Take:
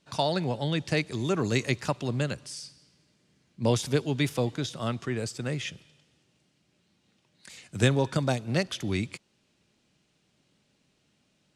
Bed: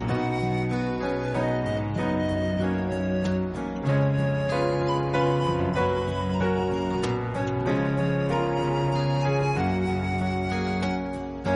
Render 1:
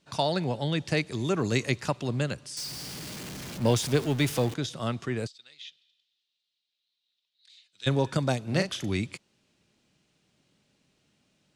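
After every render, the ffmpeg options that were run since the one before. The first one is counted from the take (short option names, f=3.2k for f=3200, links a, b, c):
-filter_complex "[0:a]asettb=1/sr,asplit=3[a][b][c];[a]atrim=end=2.574[d];[b]atrim=start=2.57:end=4.54,asetpts=PTS-STARTPTS,afade=t=in:d=0.004:c=qsin,afade=t=out:st=1.966:d=0.004:c=qsin,aeval=exprs='val(0)+0.5*0.0211*sgn(val(0))':c=same[e];[c]atrim=start=4.536[f];[d][e]acrossfade=d=0.004:c1=hsin:c2=qsin[g];[g][f]acrossfade=d=0.004:c1=qsin:c2=hsin,asplit=3[h][i][j];[h]afade=t=out:st=5.26:d=0.02[k];[i]bandpass=f=3.8k:t=q:w=5.5,afade=t=in:st=5.26:d=0.02,afade=t=out:st=7.86:d=0.02[l];[j]afade=t=in:st=7.86:d=0.02[m];[k][l][m]amix=inputs=3:normalize=0,asettb=1/sr,asplit=3[n][o][p];[n]atrim=end=8.434[q];[o]atrim=start=8.43:end=8.86,asetpts=PTS-STARTPTS,afade=t=in:d=0.004:c=qsin,afade=t=out:st=0.426:d=0.004:c=qsin,asplit=2[r][s];[s]adelay=38,volume=-7dB[t];[r][t]amix=inputs=2:normalize=0,atrim=end_sample=18963[u];[p]atrim=start=8.856[v];[q][u]acrossfade=d=0.004:c1=hsin:c2=qsin[w];[w][v]acrossfade=d=0.004:c1=qsin:c2=hsin"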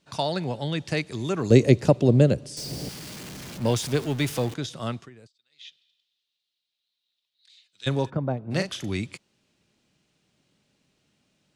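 -filter_complex "[0:a]asettb=1/sr,asplit=3[a][b][c];[a]atrim=end=1.504[d];[b]atrim=start=1.5:end=2.89,asetpts=PTS-STARTPTS,afade=t=in:d=0.004:c=qsin,afade=t=out:st=1.386:d=0.004:c=qsin,lowshelf=f=770:t=q:w=1.5:g=11[e];[c]atrim=start=2.886[f];[d][e]acrossfade=d=0.004:c1=hsin:c2=qsin[g];[g][f]acrossfade=d=0.004:c1=qsin:c2=hsin,asplit=3[h][i][j];[h]afade=t=out:st=8.09:d=0.02[k];[i]lowpass=1k,afade=t=in:st=8.09:d=0.02,afade=t=out:st=8.5:d=0.02[l];[j]afade=t=in:st=8.5:d=0.02[m];[k][l][m]amix=inputs=3:normalize=0,asplit=3[n][o][p];[n]atrim=end=5.1,asetpts=PTS-STARTPTS,afade=t=out:st=4.94:d=0.16:silence=0.11885[q];[o]atrim=start=5.1:end=5.5,asetpts=PTS-STARTPTS,volume=-18.5dB[r];[p]atrim=start=5.5,asetpts=PTS-STARTPTS,afade=t=in:d=0.16:silence=0.11885[s];[q][r][s]concat=n=3:v=0:a=1"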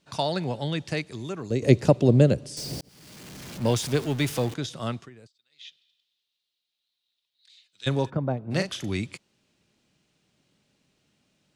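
-filter_complex "[0:a]asplit=3[a][b][c];[a]atrim=end=1.62,asetpts=PTS-STARTPTS,afade=t=out:st=0.66:d=0.96:silence=0.223872[d];[b]atrim=start=1.62:end=2.81,asetpts=PTS-STARTPTS,afade=t=in:d=0.004:c=hsin:silence=0.223872,afade=t=out:st=1.186:d=0.004:c=hsin[e];[c]atrim=start=2.81,asetpts=PTS-STARTPTS,afade=t=in:d=0.78[f];[d][e][f]concat=n=3:v=0:a=1"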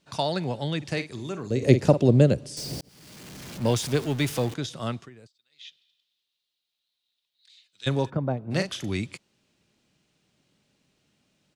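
-filter_complex "[0:a]asplit=3[a][b][c];[a]afade=t=out:st=0.81:d=0.02[d];[b]asplit=2[e][f];[f]adelay=48,volume=-11dB[g];[e][g]amix=inputs=2:normalize=0,afade=t=in:st=0.81:d=0.02,afade=t=out:st=2.05:d=0.02[h];[c]afade=t=in:st=2.05:d=0.02[i];[d][h][i]amix=inputs=3:normalize=0"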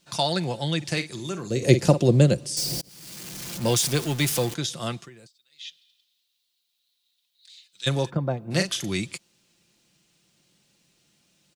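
-af "highshelf=f=3.9k:g=11.5,aecho=1:1:5.8:0.39"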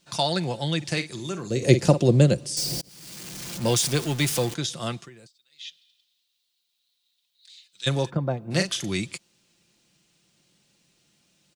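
-af "equalizer=f=12k:w=5.8:g=-9"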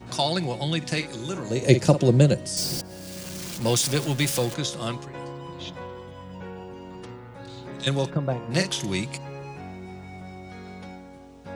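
-filter_complex "[1:a]volume=-14dB[a];[0:a][a]amix=inputs=2:normalize=0"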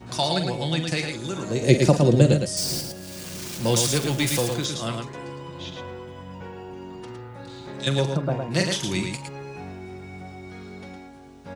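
-af "aecho=1:1:43.73|110.8:0.251|0.562"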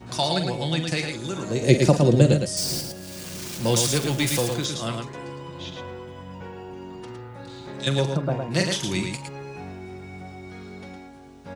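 -af anull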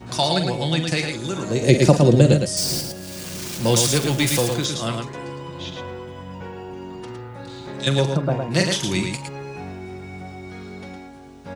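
-af "volume=3.5dB,alimiter=limit=-1dB:level=0:latency=1"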